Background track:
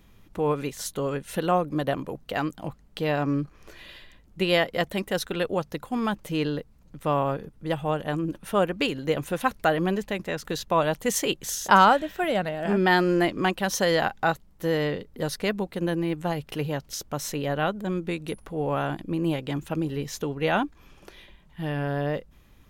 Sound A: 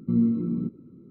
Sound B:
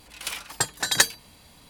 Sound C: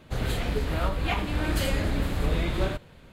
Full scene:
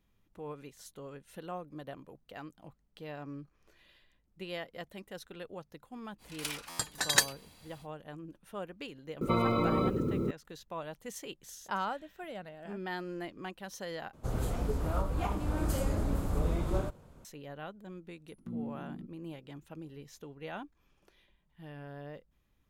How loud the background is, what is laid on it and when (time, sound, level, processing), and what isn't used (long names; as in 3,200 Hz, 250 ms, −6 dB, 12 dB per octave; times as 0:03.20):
background track −18 dB
0:06.18: mix in B −6 dB, fades 0.05 s + buffer that repeats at 0:00.51
0:09.21: mix in A −3.5 dB + every bin compressed towards the loudest bin 10 to 1
0:14.13: overwrite with C −4.5 dB + flat-topped bell 2,700 Hz −11.5 dB
0:18.38: mix in A −17 dB